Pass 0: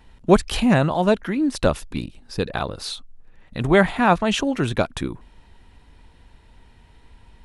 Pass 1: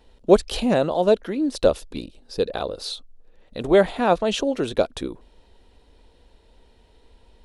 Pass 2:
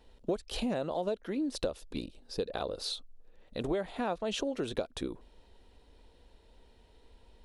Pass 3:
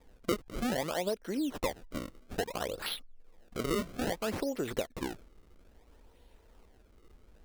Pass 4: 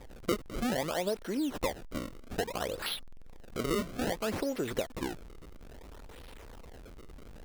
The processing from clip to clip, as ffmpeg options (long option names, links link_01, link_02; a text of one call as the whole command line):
ffmpeg -i in.wav -af "equalizer=frequency=125:width_type=o:width=1:gain=-9,equalizer=frequency=500:width_type=o:width=1:gain=10,equalizer=frequency=1000:width_type=o:width=1:gain=-3,equalizer=frequency=2000:width_type=o:width=1:gain=-5,equalizer=frequency=4000:width_type=o:width=1:gain=5,volume=-4dB" out.wav
ffmpeg -i in.wav -af "acompressor=threshold=-24dB:ratio=12,volume=-5dB" out.wav
ffmpeg -i in.wav -af "acrusher=samples=30:mix=1:aa=0.000001:lfo=1:lforange=48:lforate=0.6" out.wav
ffmpeg -i in.wav -af "aeval=exprs='val(0)+0.5*0.00596*sgn(val(0))':channel_layout=same" out.wav